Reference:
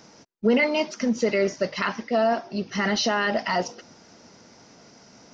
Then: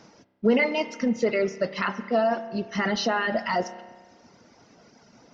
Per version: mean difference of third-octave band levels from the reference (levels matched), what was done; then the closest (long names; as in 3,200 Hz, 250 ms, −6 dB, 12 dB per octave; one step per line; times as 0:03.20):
3.0 dB: reverb reduction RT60 1.1 s
high-shelf EQ 5,700 Hz −11 dB
spring reverb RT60 1.5 s, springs 31 ms, chirp 45 ms, DRR 12 dB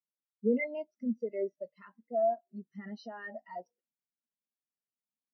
16.0 dB: low-shelf EQ 140 Hz −3 dB
in parallel at −1 dB: downward compressor, threshold −32 dBFS, peak gain reduction 15 dB
on the sum: every bin expanded away from the loudest bin 2.5 to 1
level −8.5 dB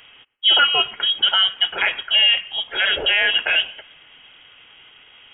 11.5 dB: high-pass filter 330 Hz 6 dB per octave
on a send: feedback echo with a high-pass in the loop 115 ms, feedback 47%, high-pass 690 Hz, level −23.5 dB
on the sum: voice inversion scrambler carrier 3,500 Hz
level +7 dB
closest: first